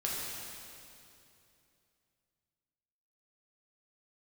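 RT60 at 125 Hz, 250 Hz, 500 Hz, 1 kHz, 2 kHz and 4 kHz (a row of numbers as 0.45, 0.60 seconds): 3.3, 3.1, 2.9, 2.6, 2.5, 2.5 seconds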